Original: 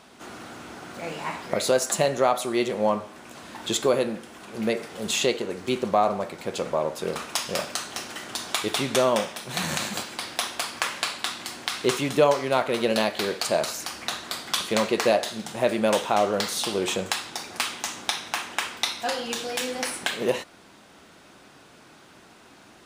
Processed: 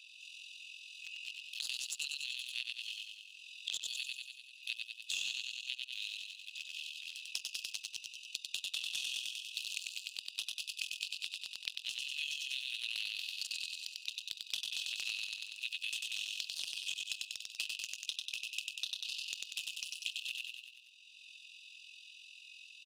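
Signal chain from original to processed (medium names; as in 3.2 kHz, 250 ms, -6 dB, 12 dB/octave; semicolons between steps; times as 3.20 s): local Wiener filter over 41 samples; brick-wall FIR high-pass 2.5 kHz; transient shaper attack -7 dB, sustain +1 dB; on a send: feedback delay 96 ms, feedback 48%, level -3 dB; on the sum: AM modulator 43 Hz, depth 35%; in parallel at -7.5 dB: saturation -33 dBFS, distortion -9 dB; on the sum: compression 2.5:1, threshold -40 dBFS, peak gain reduction 8.5 dB; treble shelf 4.5 kHz -11 dB; three bands compressed up and down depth 70%; trim +7.5 dB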